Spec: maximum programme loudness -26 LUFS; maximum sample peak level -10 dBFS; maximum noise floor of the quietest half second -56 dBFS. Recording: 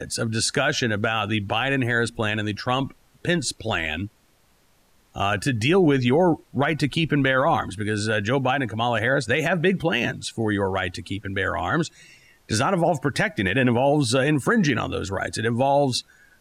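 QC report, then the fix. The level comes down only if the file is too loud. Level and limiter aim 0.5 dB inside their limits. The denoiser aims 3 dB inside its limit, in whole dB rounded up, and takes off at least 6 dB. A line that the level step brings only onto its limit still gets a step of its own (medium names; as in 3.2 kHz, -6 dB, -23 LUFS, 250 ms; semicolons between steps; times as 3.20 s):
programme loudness -22.5 LUFS: fail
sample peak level -10.5 dBFS: pass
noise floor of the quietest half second -60 dBFS: pass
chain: trim -4 dB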